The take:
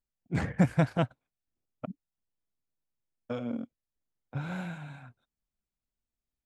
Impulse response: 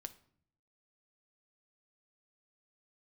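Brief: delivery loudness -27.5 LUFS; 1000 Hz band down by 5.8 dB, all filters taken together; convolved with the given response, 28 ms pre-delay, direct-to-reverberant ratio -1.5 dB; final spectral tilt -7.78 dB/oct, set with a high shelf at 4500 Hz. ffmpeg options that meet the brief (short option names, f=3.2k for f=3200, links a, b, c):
-filter_complex "[0:a]equalizer=f=1k:t=o:g=-9,highshelf=f=4.5k:g=-3.5,asplit=2[a][b];[1:a]atrim=start_sample=2205,adelay=28[c];[b][c]afir=irnorm=-1:irlink=0,volume=6dB[d];[a][d]amix=inputs=2:normalize=0,volume=1dB"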